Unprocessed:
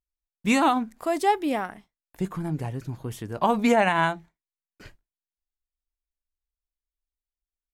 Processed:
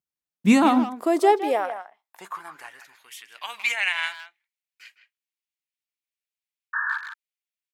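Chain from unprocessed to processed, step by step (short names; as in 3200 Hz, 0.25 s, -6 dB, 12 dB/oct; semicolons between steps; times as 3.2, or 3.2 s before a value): painted sound noise, 6.73–6.98, 870–1800 Hz -22 dBFS; speakerphone echo 0.16 s, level -10 dB; high-pass sweep 150 Hz -> 2300 Hz, 0.22–3.17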